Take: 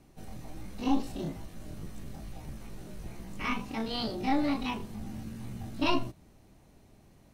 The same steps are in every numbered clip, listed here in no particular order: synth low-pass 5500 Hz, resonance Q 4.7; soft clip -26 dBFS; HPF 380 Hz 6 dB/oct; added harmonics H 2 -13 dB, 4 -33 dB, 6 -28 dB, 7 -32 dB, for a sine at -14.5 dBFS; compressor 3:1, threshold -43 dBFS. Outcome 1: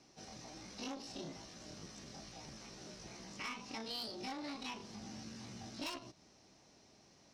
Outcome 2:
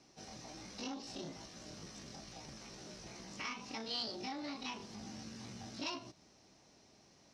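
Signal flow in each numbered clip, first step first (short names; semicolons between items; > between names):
synth low-pass > soft clip > HPF > added harmonics > compressor; added harmonics > soft clip > HPF > compressor > synth low-pass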